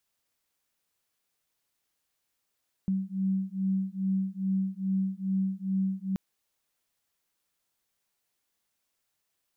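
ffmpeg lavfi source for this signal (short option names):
-f lavfi -i "aevalsrc='0.0335*(sin(2*PI*190*t)+sin(2*PI*192.4*t))':d=3.28:s=44100"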